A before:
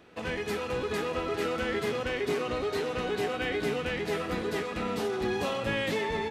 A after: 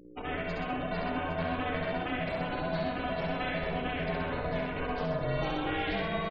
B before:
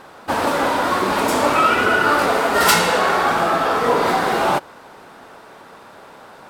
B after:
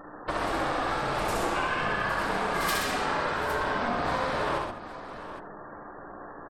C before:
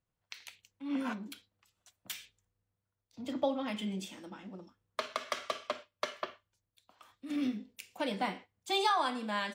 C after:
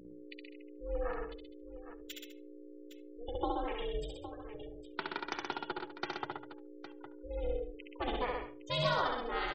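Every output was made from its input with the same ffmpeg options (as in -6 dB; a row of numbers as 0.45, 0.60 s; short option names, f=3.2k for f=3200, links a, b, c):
-filter_complex "[0:a]afftfilt=real='re*gte(hypot(re,im),0.0158)':imag='im*gte(hypot(re,im),0.0158)':win_size=1024:overlap=0.75,acompressor=threshold=-27dB:ratio=4,aeval=exprs='val(0)+0.00398*(sin(2*PI*60*n/s)+sin(2*PI*2*60*n/s)/2+sin(2*PI*3*60*n/s)/3+sin(2*PI*4*60*n/s)/4+sin(2*PI*5*60*n/s)/5)':c=same,asplit=2[a][b];[b]adelay=72,lowpass=f=1.7k:p=1,volume=-15dB,asplit=2[c][d];[d]adelay=72,lowpass=f=1.7k:p=1,volume=0.17[e];[c][e]amix=inputs=2:normalize=0[f];[a][f]amix=inputs=2:normalize=0,aeval=exprs='val(0)*sin(2*PI*240*n/s)':c=same,bandreject=f=60:t=h:w=6,bandreject=f=120:t=h:w=6,bandreject=f=180:t=h:w=6,asplit=2[g][h];[h]aecho=0:1:67|126|202|811:0.668|0.531|0.178|0.237[i];[g][i]amix=inputs=2:normalize=0"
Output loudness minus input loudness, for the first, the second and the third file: -2.0, -11.5, -2.5 LU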